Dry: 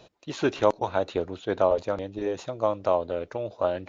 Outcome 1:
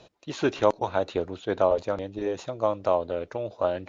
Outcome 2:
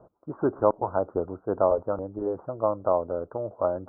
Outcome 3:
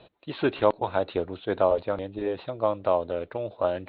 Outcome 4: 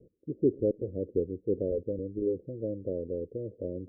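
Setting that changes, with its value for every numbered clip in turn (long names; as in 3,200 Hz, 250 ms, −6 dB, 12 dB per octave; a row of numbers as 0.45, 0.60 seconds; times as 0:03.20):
Butterworth low-pass, frequency: 12,000, 1,400, 4,100, 500 Hertz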